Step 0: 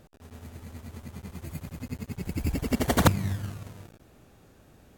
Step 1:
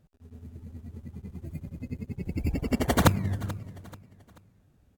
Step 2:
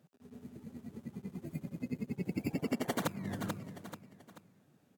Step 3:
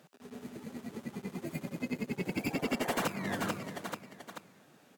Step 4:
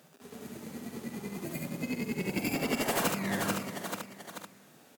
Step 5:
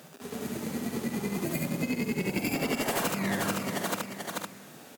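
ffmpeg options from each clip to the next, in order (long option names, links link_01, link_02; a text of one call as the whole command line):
ffmpeg -i in.wav -af "afftdn=noise_reduction=15:noise_floor=-42,aecho=1:1:435|870|1305:0.119|0.0452|0.0172" out.wav
ffmpeg -i in.wav -af "highpass=frequency=150:width=0.5412,highpass=frequency=150:width=1.3066,acompressor=threshold=-31dB:ratio=16,volume=1dB" out.wav
ffmpeg -i in.wav -filter_complex "[0:a]asplit=2[link_01][link_02];[link_02]highpass=frequency=720:poles=1,volume=25dB,asoftclip=type=tanh:threshold=-16.5dB[link_03];[link_01][link_03]amix=inputs=2:normalize=0,lowpass=frequency=7500:poles=1,volume=-6dB,volume=-5dB" out.wav
ffmpeg -i in.wav -af "highshelf=frequency=6000:gain=8.5,aecho=1:1:46|71:0.355|0.708" out.wav
ffmpeg -i in.wav -af "acompressor=threshold=-36dB:ratio=5,volume=9dB" out.wav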